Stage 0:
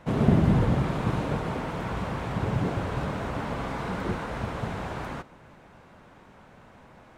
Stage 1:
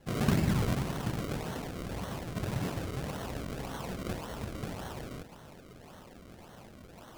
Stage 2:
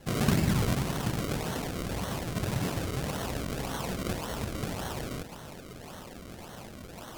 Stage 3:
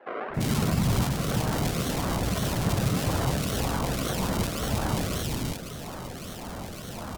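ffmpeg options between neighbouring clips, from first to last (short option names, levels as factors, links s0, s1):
-af "areverse,acompressor=mode=upward:threshold=0.02:ratio=2.5,areverse,acrusher=samples=35:mix=1:aa=0.000001:lfo=1:lforange=35:lforate=1.8,volume=0.447"
-filter_complex "[0:a]equalizer=f=11000:t=o:w=2.8:g=4.5,asplit=2[s0][s1];[s1]acompressor=threshold=0.0112:ratio=6,volume=1.06[s2];[s0][s2]amix=inputs=2:normalize=0"
-filter_complex "[0:a]alimiter=limit=0.0841:level=0:latency=1:release=499,acrossover=split=400|2000[s0][s1][s2];[s0]adelay=300[s3];[s2]adelay=340[s4];[s3][s1][s4]amix=inputs=3:normalize=0,volume=2.51"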